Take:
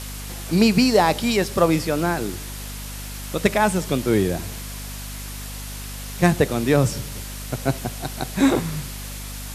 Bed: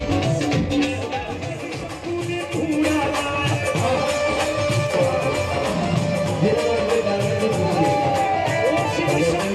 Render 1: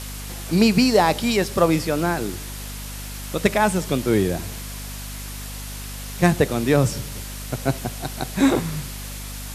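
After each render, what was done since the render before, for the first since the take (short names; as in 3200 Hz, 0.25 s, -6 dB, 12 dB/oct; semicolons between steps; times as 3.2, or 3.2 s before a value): nothing audible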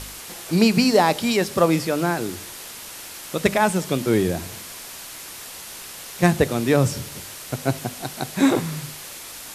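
de-hum 50 Hz, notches 5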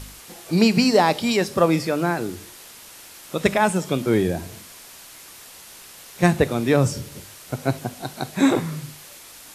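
noise print and reduce 6 dB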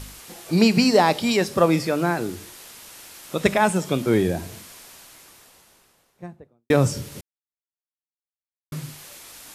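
4.53–6.7 studio fade out; 7.21–8.72 mute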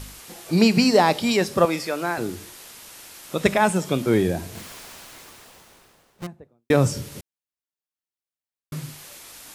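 1.65–2.18 HPF 580 Hz 6 dB/oct; 4.55–6.27 half-waves squared off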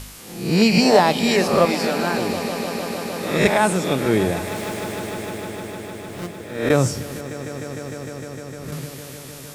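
spectral swells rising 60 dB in 0.61 s; swelling echo 0.152 s, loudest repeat 5, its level -16 dB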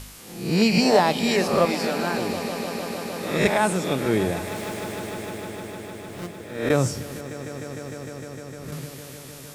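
gain -3.5 dB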